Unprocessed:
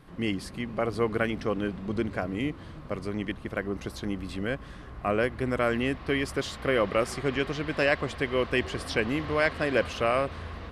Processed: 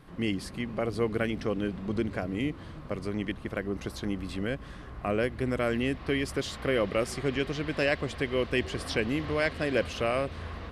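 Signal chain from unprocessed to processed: dynamic bell 1.1 kHz, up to -6 dB, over -38 dBFS, Q 0.85

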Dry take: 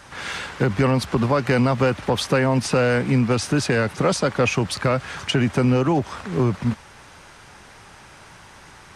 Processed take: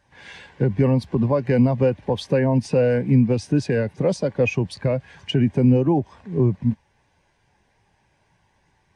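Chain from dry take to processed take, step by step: peaking EQ 1.3 kHz -14.5 dB 0.24 oct; spectral contrast expander 1.5:1

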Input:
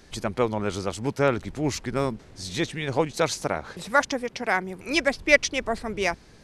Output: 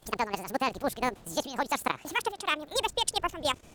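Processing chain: gliding tape speed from 198% -> 146%; level held to a coarse grid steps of 13 dB

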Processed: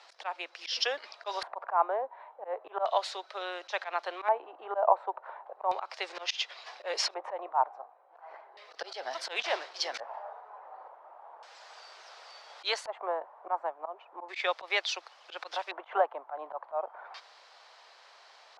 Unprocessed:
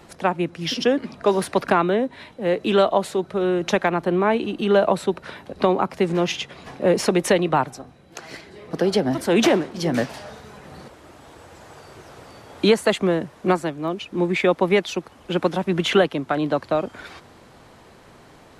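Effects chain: inverse Chebyshev high-pass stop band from 190 Hz, stop band 60 dB; slow attack 110 ms; LFO low-pass square 0.35 Hz 900–4900 Hz; trim -5.5 dB

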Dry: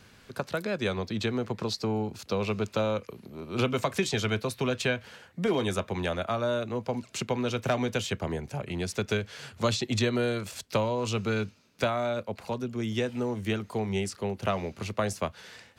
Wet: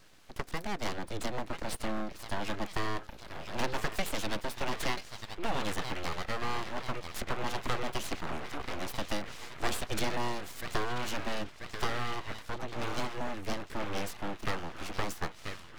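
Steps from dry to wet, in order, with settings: feedback echo behind a band-pass 987 ms, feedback 63%, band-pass 1.4 kHz, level -4.5 dB; full-wave rectifier; trim -2.5 dB

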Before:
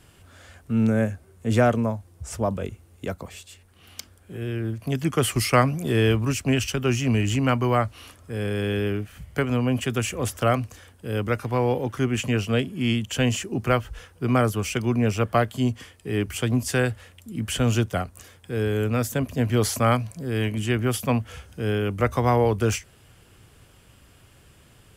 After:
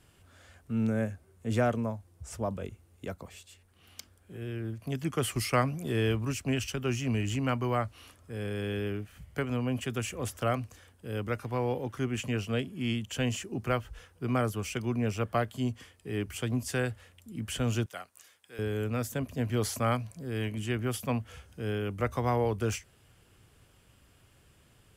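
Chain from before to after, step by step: 17.86–18.59 s: high-pass 1.5 kHz 6 dB/octave; trim -8 dB

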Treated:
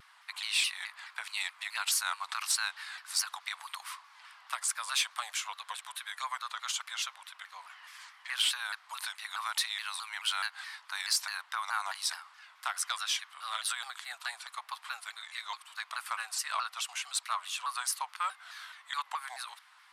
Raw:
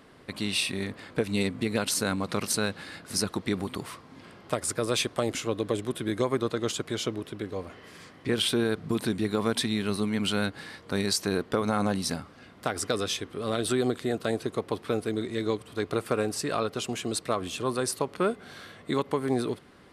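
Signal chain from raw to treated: steep high-pass 890 Hz 48 dB/octave; saturation -17.5 dBFS, distortion -23 dB; vibrato with a chosen wave saw down 4.7 Hz, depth 160 cents

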